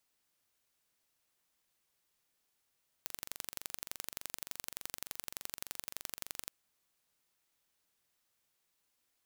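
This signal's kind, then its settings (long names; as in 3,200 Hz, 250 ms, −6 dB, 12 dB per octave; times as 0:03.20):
impulse train 23.4 per second, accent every 2, −11 dBFS 3.44 s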